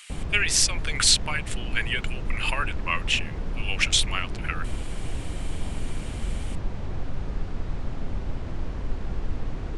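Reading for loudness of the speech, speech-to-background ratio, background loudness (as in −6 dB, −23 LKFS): −24.5 LKFS, 10.5 dB, −35.0 LKFS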